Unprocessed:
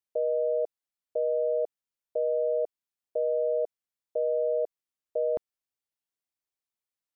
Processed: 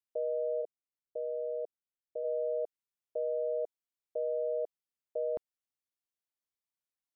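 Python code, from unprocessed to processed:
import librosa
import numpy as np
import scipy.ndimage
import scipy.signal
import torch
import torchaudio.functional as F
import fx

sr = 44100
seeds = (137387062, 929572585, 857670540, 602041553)

y = fx.bessel_lowpass(x, sr, hz=550.0, order=2, at=(0.61, 2.23), fade=0.02)
y = F.gain(torch.from_numpy(y), -6.0).numpy()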